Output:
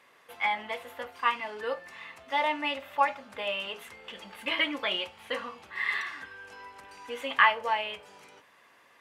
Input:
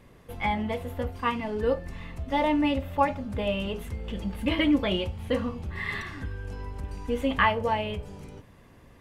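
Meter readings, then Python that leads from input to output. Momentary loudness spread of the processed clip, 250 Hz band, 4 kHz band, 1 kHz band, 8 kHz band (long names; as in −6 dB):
17 LU, −15.5 dB, +2.5 dB, 0.0 dB, can't be measured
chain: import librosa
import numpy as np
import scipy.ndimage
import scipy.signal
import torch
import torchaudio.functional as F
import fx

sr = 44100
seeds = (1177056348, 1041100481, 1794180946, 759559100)

y = scipy.signal.sosfilt(scipy.signal.butter(2, 1300.0, 'highpass', fs=sr, output='sos'), x)
y = fx.tilt_eq(y, sr, slope=-2.5)
y = y * 10.0 ** (6.5 / 20.0)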